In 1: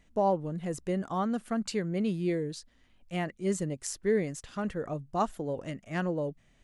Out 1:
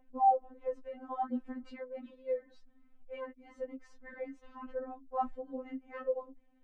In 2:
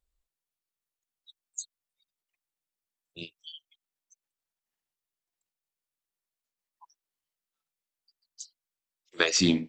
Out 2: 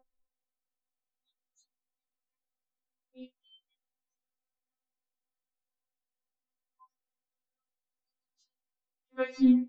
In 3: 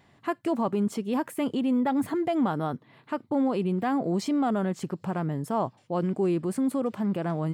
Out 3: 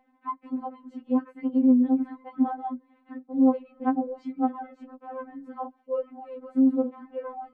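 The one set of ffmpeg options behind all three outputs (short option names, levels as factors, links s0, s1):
-af "aeval=exprs='val(0)+0.00398*sin(2*PI*660*n/s)':c=same,lowpass=1200,afftfilt=real='re*3.46*eq(mod(b,12),0)':imag='im*3.46*eq(mod(b,12),0)':win_size=2048:overlap=0.75"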